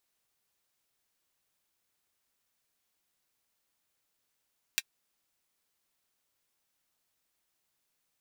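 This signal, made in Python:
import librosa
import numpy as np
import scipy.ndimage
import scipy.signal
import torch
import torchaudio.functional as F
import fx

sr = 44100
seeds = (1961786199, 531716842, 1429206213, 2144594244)

y = fx.drum_hat(sr, length_s=0.24, from_hz=2200.0, decay_s=0.05)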